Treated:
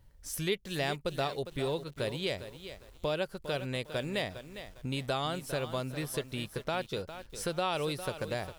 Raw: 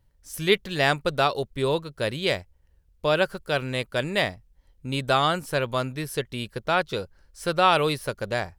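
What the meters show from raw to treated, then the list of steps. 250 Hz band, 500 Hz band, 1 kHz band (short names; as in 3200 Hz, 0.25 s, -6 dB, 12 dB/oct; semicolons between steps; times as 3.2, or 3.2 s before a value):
-7.0 dB, -8.5 dB, -12.5 dB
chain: dynamic EQ 1400 Hz, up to -6 dB, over -35 dBFS, Q 1.1; compressor 2:1, threshold -45 dBFS, peak gain reduction 16 dB; lo-fi delay 0.405 s, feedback 35%, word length 9-bit, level -11 dB; gain +4.5 dB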